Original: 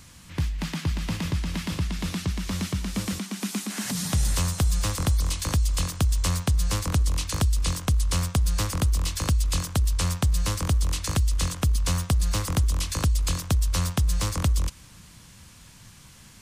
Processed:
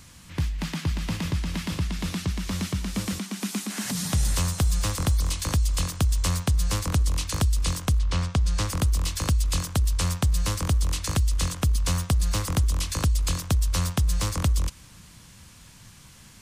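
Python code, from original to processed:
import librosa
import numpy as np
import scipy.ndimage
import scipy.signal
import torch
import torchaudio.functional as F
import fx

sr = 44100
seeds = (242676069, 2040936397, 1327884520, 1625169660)

y = fx.quant_float(x, sr, bits=6, at=(4.35, 5.38))
y = fx.lowpass(y, sr, hz=fx.line((7.98, 3500.0), (8.66, 8700.0)), slope=12, at=(7.98, 8.66), fade=0.02)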